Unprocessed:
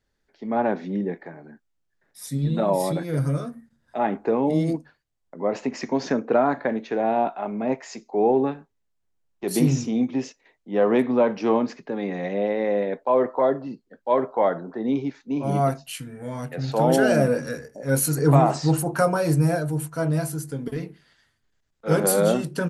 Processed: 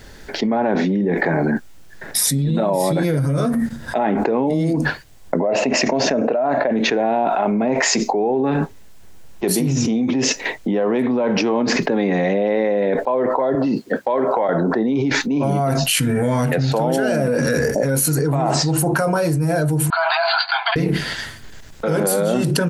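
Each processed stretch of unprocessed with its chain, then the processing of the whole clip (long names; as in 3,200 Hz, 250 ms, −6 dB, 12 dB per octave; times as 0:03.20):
0:05.40–0:06.71: hollow resonant body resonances 630/2,700 Hz, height 13 dB, ringing for 25 ms + downward compressor 2 to 1, threshold −17 dBFS
0:13.55–0:14.49: Bessel high-pass filter 180 Hz + downward compressor 2.5 to 1, threshold −39 dBFS
0:19.90–0:20.76: linear-phase brick-wall band-pass 660–4,800 Hz + notch filter 1,900 Hz, Q 7.6
whole clip: notch filter 1,200 Hz, Q 17; envelope flattener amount 100%; level −5.5 dB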